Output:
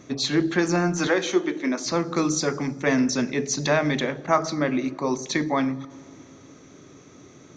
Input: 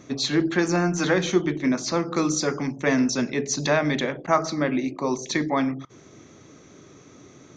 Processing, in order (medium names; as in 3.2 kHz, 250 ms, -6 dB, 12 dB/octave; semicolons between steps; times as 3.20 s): 1.07–1.86 s: high-pass 260 Hz 24 dB/octave; on a send: reverberation RT60 2.7 s, pre-delay 48 ms, DRR 21.5 dB